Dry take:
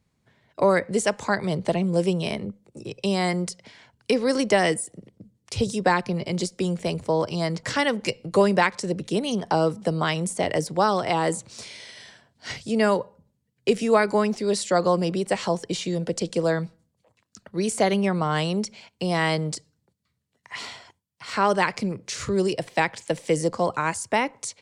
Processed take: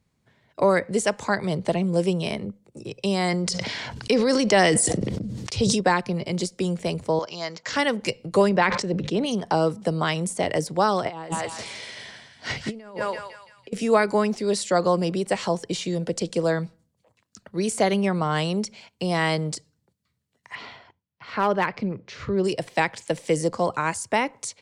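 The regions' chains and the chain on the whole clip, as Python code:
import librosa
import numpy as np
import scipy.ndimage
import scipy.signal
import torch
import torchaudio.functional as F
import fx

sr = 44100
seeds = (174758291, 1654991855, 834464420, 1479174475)

y = fx.chain(x, sr, fx.lowpass(hz=7900.0, slope=12),
    fx.peak_eq(hz=4600.0, db=3.5, octaves=0.91),
    fx.sustainer(db_per_s=21.0), at=(3.28, 5.81))
y = fx.chain(y, sr, fx.highpass(hz=890.0, slope=6),
    fx.resample_bad(factor=3, down='none', up='filtered'), at=(7.19, 7.73))
y = fx.chain(y, sr, fx.air_absorb(metres=130.0),
    fx.hum_notches(base_hz=50, count=3),
    fx.sustainer(db_per_s=56.0), at=(8.49, 9.26))
y = fx.chain(y, sr, fx.lowpass(hz=3400.0, slope=6),
    fx.echo_thinned(ms=168, feedback_pct=48, hz=1000.0, wet_db=-7.0),
    fx.over_compress(threshold_db=-29.0, ratio=-0.5), at=(11.05, 13.73))
y = fx.chain(y, sr, fx.air_absorb(metres=260.0),
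    fx.clip_hard(threshold_db=-12.5), at=(20.55, 22.44))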